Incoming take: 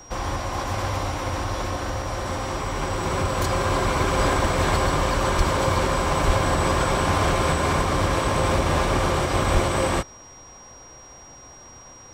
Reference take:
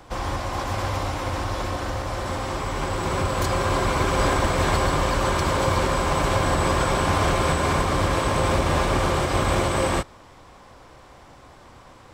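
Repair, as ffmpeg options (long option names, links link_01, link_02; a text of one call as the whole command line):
ffmpeg -i in.wav -filter_complex "[0:a]bandreject=frequency=5700:width=30,asplit=3[link_01][link_02][link_03];[link_01]afade=type=out:start_time=5.37:duration=0.02[link_04];[link_02]highpass=frequency=140:width=0.5412,highpass=frequency=140:width=1.3066,afade=type=in:start_time=5.37:duration=0.02,afade=type=out:start_time=5.49:duration=0.02[link_05];[link_03]afade=type=in:start_time=5.49:duration=0.02[link_06];[link_04][link_05][link_06]amix=inputs=3:normalize=0,asplit=3[link_07][link_08][link_09];[link_07]afade=type=out:start_time=6.26:duration=0.02[link_10];[link_08]highpass=frequency=140:width=0.5412,highpass=frequency=140:width=1.3066,afade=type=in:start_time=6.26:duration=0.02,afade=type=out:start_time=6.38:duration=0.02[link_11];[link_09]afade=type=in:start_time=6.38:duration=0.02[link_12];[link_10][link_11][link_12]amix=inputs=3:normalize=0,asplit=3[link_13][link_14][link_15];[link_13]afade=type=out:start_time=9.53:duration=0.02[link_16];[link_14]highpass=frequency=140:width=0.5412,highpass=frequency=140:width=1.3066,afade=type=in:start_time=9.53:duration=0.02,afade=type=out:start_time=9.65:duration=0.02[link_17];[link_15]afade=type=in:start_time=9.65:duration=0.02[link_18];[link_16][link_17][link_18]amix=inputs=3:normalize=0" out.wav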